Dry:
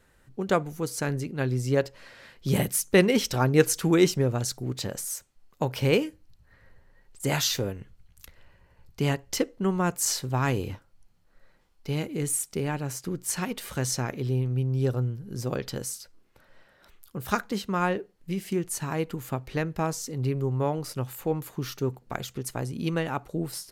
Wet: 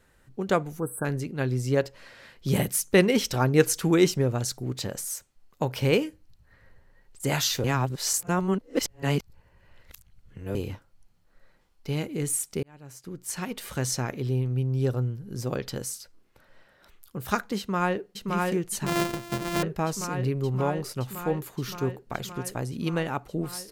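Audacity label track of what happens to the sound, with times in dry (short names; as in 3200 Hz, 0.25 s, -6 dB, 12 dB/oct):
0.800000	1.050000	spectral delete 1700–7800 Hz
7.640000	10.550000	reverse
12.630000	13.710000	fade in linear
17.580000	18.330000	echo throw 0.57 s, feedback 80%, level -2 dB
18.860000	19.630000	sample sorter in blocks of 128 samples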